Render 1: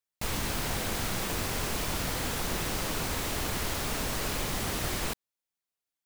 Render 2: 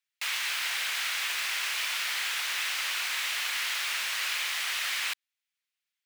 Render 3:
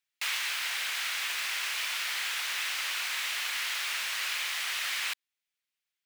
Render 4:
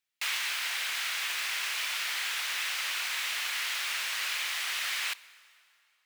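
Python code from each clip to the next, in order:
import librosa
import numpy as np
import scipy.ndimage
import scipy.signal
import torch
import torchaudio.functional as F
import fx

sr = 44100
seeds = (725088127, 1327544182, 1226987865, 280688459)

y1 = scipy.signal.sosfilt(scipy.signal.butter(2, 1400.0, 'highpass', fs=sr, output='sos'), x)
y1 = fx.peak_eq(y1, sr, hz=2400.0, db=12.5, octaves=2.2)
y1 = y1 * 10.0 ** (-3.0 / 20.0)
y2 = fx.rider(y1, sr, range_db=10, speed_s=0.5)
y2 = y2 * 10.0 ** (-1.5 / 20.0)
y3 = fx.rev_plate(y2, sr, seeds[0], rt60_s=2.7, hf_ratio=0.85, predelay_ms=0, drr_db=18.5)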